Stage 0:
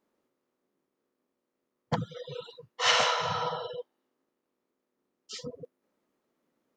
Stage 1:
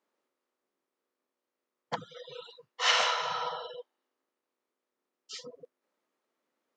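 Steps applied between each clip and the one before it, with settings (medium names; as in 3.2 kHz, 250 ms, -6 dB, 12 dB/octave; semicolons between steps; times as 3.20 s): frequency weighting A; trim -2 dB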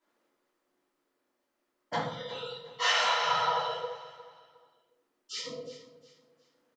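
compression 4:1, threshold -32 dBFS, peak gain reduction 10.5 dB; feedback delay 359 ms, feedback 32%, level -15.5 dB; simulated room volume 150 m³, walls mixed, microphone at 2.9 m; trim -3 dB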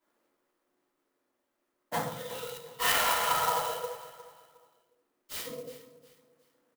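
sampling jitter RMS 0.048 ms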